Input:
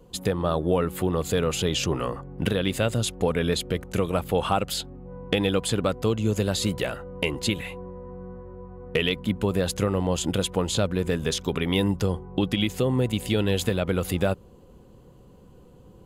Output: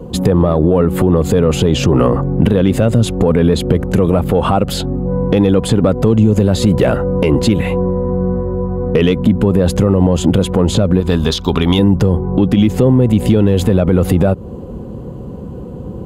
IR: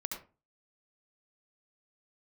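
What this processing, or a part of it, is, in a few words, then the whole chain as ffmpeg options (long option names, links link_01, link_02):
mastering chain: -filter_complex "[0:a]asettb=1/sr,asplit=3[link_01][link_02][link_03];[link_01]atrim=end=11.004[link_04];[link_02]atrim=start=11:end=11.79,asetpts=PTS-STARTPTS,afade=type=in:duration=0.004:curve=qsin,afade=type=out:start_time=0.786:duration=0.004:curve=qsin,equalizer=frequency=125:width_type=o:width=1:gain=-11,equalizer=frequency=250:width_type=o:width=1:gain=-5,equalizer=frequency=500:width_type=o:width=1:gain=-10,equalizer=frequency=1000:width_type=o:width=1:gain=3,equalizer=frequency=2000:width_type=o:width=1:gain=-7,equalizer=frequency=4000:width_type=o:width=1:gain=10,equalizer=frequency=8000:width_type=o:width=1:gain=-4[link_05];[link_03]atrim=start=11.786[link_06];[link_04][link_05]acrossfade=duration=0.004:curve1=hsin:curve2=qsin[link_07];[link_07][link_06]acrossfade=duration=0.004:curve1=qsin:curve2=hsin,highpass=47,equalizer=frequency=230:width_type=o:width=0.24:gain=3.5,acompressor=threshold=-28dB:ratio=2,asoftclip=type=tanh:threshold=-16.5dB,tiltshelf=frequency=1300:gain=8.5,alimiter=level_in=17dB:limit=-1dB:release=50:level=0:latency=1,volume=-1dB"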